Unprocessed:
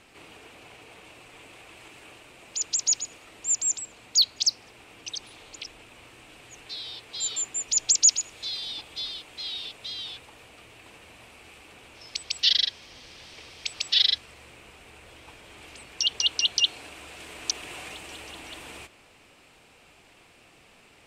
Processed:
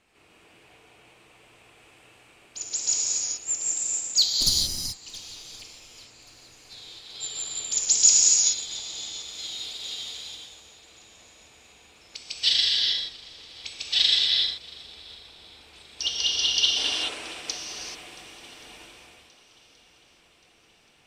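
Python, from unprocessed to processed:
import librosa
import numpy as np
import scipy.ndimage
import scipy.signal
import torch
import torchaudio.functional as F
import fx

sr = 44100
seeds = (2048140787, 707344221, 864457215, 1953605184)

y = fx.lower_of_two(x, sr, delay_ms=1.0, at=(4.27, 4.93))
y = fx.high_shelf(y, sr, hz=6500.0, db=10.0, at=(9.22, 10.31))
y = fx.spec_box(y, sr, start_s=16.77, length_s=0.4, low_hz=230.0, high_hz=11000.0, gain_db=10)
y = fx.echo_swing(y, sr, ms=1127, ratio=1.5, feedback_pct=47, wet_db=-16.5)
y = fx.rev_gated(y, sr, seeds[0], gate_ms=460, shape='flat', drr_db=-4.5)
y = fx.upward_expand(y, sr, threshold_db=-37.0, expansion=1.5)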